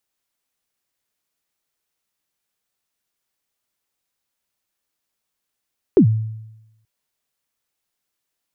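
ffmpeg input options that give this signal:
ffmpeg -f lavfi -i "aevalsrc='0.531*pow(10,-3*t/0.94)*sin(2*PI*(440*0.091/log(110/440)*(exp(log(110/440)*min(t,0.091)/0.091)-1)+110*max(t-0.091,0)))':duration=0.88:sample_rate=44100" out.wav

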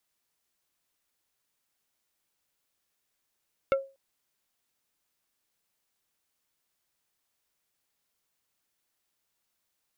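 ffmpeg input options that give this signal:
ffmpeg -f lavfi -i "aevalsrc='0.126*pow(10,-3*t/0.3)*sin(2*PI*543*t)+0.0668*pow(10,-3*t/0.1)*sin(2*PI*1357.5*t)+0.0355*pow(10,-3*t/0.057)*sin(2*PI*2172*t)+0.0188*pow(10,-3*t/0.043)*sin(2*PI*2715*t)+0.01*pow(10,-3*t/0.032)*sin(2*PI*3529.5*t)':duration=0.24:sample_rate=44100" out.wav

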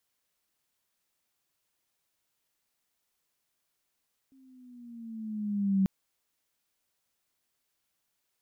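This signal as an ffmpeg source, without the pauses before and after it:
ffmpeg -f lavfi -i "aevalsrc='pow(10,(-20.5+36*(t/1.54-1))/20)*sin(2*PI*269*1.54/(-6*log(2)/12)*(exp(-6*log(2)/12*t/1.54)-1))':duration=1.54:sample_rate=44100" out.wav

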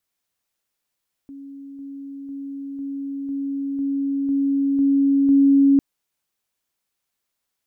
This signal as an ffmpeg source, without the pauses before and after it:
ffmpeg -f lavfi -i "aevalsrc='pow(10,(-35+3*floor(t/0.5))/20)*sin(2*PI*277*t)':duration=4.5:sample_rate=44100" out.wav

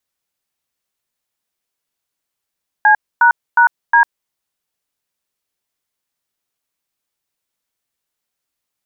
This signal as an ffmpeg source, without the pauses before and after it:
ffmpeg -f lavfi -i "aevalsrc='0.355*clip(min(mod(t,0.361),0.099-mod(t,0.361))/0.002,0,1)*(eq(floor(t/0.361),0)*(sin(2*PI*852*mod(t,0.361))+sin(2*PI*1633*mod(t,0.361)))+eq(floor(t/0.361),1)*(sin(2*PI*941*mod(t,0.361))+sin(2*PI*1477*mod(t,0.361)))+eq(floor(t/0.361),2)*(sin(2*PI*941*mod(t,0.361))+sin(2*PI*1477*mod(t,0.361)))+eq(floor(t/0.361),3)*(sin(2*PI*941*mod(t,0.361))+sin(2*PI*1633*mod(t,0.361))))':duration=1.444:sample_rate=44100" out.wav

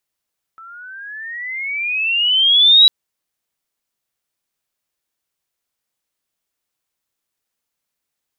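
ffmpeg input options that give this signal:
ffmpeg -f lavfi -i "aevalsrc='pow(10,(-4.5+31*(t/2.3-1))/20)*sin(2*PI*1310*2.3/(19*log(2)/12)*(exp(19*log(2)/12*t/2.3)-1))':duration=2.3:sample_rate=44100" out.wav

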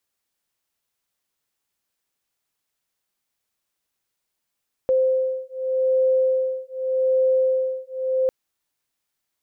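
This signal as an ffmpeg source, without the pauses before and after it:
ffmpeg -f lavfi -i "aevalsrc='0.0891*(sin(2*PI*520*t)+sin(2*PI*520.84*t))':duration=3.4:sample_rate=44100" out.wav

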